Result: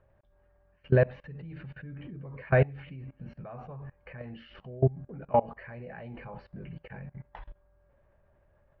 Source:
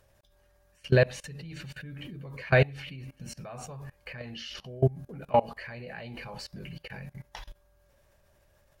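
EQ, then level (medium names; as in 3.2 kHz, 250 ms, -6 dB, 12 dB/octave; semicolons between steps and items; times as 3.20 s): low-pass 1.8 kHz 12 dB/octave; distance through air 270 m; 0.0 dB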